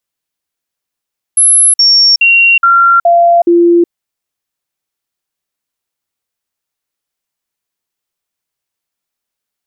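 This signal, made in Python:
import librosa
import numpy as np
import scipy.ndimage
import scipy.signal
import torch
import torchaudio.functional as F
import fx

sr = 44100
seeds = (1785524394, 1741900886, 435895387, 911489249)

y = fx.stepped_sweep(sr, from_hz=11000.0, direction='down', per_octave=1, tones=6, dwell_s=0.37, gap_s=0.05, level_db=-3.5)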